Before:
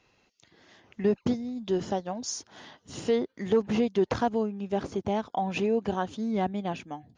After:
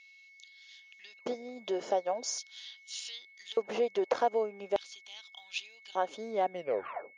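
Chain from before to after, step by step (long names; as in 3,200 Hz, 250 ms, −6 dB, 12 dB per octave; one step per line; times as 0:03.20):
turntable brake at the end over 0.69 s
downward compressor 1.5 to 1, threshold −35 dBFS, peak gain reduction 6 dB
auto-filter high-pass square 0.42 Hz 530–3,600 Hz
steady tone 2,200 Hz −55 dBFS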